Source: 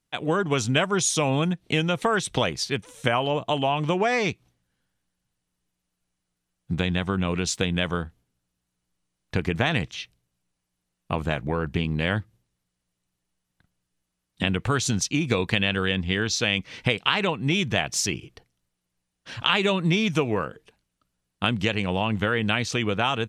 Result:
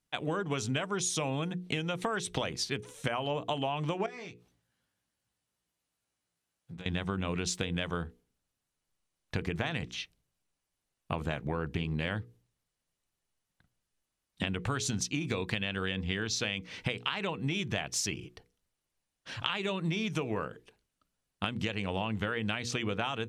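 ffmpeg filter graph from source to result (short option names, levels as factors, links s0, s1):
-filter_complex "[0:a]asettb=1/sr,asplit=3[s0][s1][s2];[s0]atrim=end=4.064[s3];[s1]atrim=start=4.06:end=6.86,asetpts=PTS-STARTPTS,afade=t=in:d=0.004:c=qsin,afade=t=out:st=2.796:d=0.004:c=qsin,acompressor=threshold=0.00708:ratio=3:attack=3.2:release=140:knee=1:detection=peak,highpass=58,asplit=2[s4][s5];[s5]adelay=17,volume=0.631[s6];[s4][s6]amix=inputs=2:normalize=0,atrim=end_sample=123480[s7];[s2]atrim=start=6.856[s8];[s3][s7]acrossfade=d=0.004:c1=hsin:c2=qsin[s9];[s9][s8]acrossfade=d=0.004:c1=qsin:c2=hsin,bandreject=f=60:t=h:w=6,bandreject=f=120:t=h:w=6,bandreject=f=180:t=h:w=6,bandreject=f=240:t=h:w=6,bandreject=f=300:t=h:w=6,bandreject=f=360:t=h:w=6,bandreject=f=420:t=h:w=6,bandreject=f=480:t=h:w=6,acompressor=threshold=0.0562:ratio=6,volume=0.668"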